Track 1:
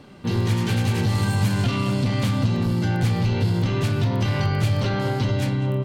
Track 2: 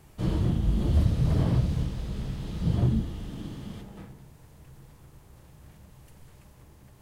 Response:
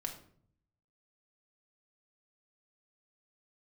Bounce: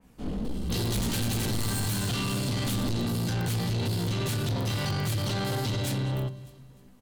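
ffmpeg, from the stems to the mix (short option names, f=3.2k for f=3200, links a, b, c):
-filter_complex "[0:a]highshelf=f=5k:g=7.5,aexciter=amount=3.3:drive=3.3:freq=3.2k,adelay=450,volume=-3.5dB,asplit=3[a][b][c];[b]volume=-9.5dB[d];[c]volume=-24dB[e];[1:a]aeval=exprs='val(0)*sin(2*PI*120*n/s)':c=same,flanger=delay=15.5:depth=4.6:speed=1.6,volume=-1.5dB,asplit=2[f][g];[g]volume=-5dB[h];[2:a]atrim=start_sample=2205[i];[d][h]amix=inputs=2:normalize=0[j];[j][i]afir=irnorm=-1:irlink=0[k];[e]aecho=0:1:301|602|903|1204|1505:1|0.33|0.109|0.0359|0.0119[l];[a][f][k][l]amix=inputs=4:normalize=0,asoftclip=type=tanh:threshold=-25dB,adynamicequalizer=threshold=0.00501:dfrequency=2800:dqfactor=0.7:tfrequency=2800:tqfactor=0.7:attack=5:release=100:ratio=0.375:range=2:mode=cutabove:tftype=highshelf"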